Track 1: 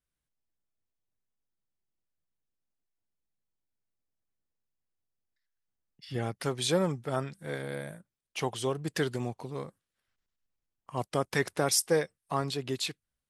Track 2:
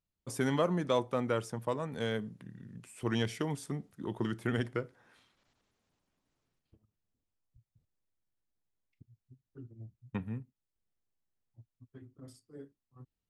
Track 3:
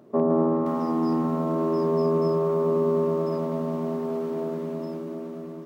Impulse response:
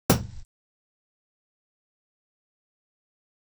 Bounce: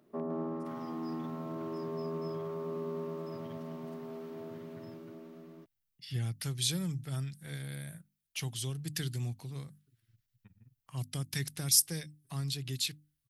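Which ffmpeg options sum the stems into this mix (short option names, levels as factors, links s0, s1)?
-filter_complex "[0:a]highshelf=f=6100:g=11.5,bandreject=f=50:t=h:w=6,bandreject=f=100:t=h:w=6,bandreject=f=150:t=h:w=6,bandreject=f=200:t=h:w=6,bandreject=f=250:t=h:w=6,bandreject=f=300:t=h:w=6,acrossover=split=290|3000[s0][s1][s2];[s1]acompressor=threshold=0.00631:ratio=2.5[s3];[s0][s3][s2]amix=inputs=3:normalize=0,volume=0.944[s4];[1:a]tremolo=f=19:d=0.93,adelay=300,volume=0.106[s5];[2:a]highpass=240,volume=0.531[s6];[s4][s5][s6]amix=inputs=3:normalize=0,equalizer=f=125:t=o:w=1:g=5,equalizer=f=250:t=o:w=1:g=-5,equalizer=f=500:t=o:w=1:g=-10,equalizer=f=1000:t=o:w=1:g=-7,equalizer=f=8000:t=o:w=1:g=-6"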